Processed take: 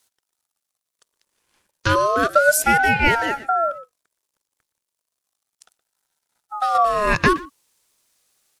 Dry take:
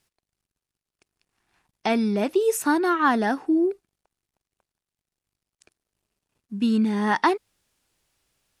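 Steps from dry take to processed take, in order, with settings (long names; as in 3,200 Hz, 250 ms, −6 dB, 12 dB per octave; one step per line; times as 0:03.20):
dynamic equaliser 460 Hz, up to +5 dB, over −33 dBFS, Q 0.71
far-end echo of a speakerphone 120 ms, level −17 dB
0:03.14–0:06.75: downward compressor 2 to 1, threshold −23 dBFS, peak gain reduction 5.5 dB
high-pass filter 170 Hz
bass and treble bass +4 dB, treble +9 dB
ring modulator whose carrier an LFO sweeps 930 Hz, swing 25%, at 0.33 Hz
level +3.5 dB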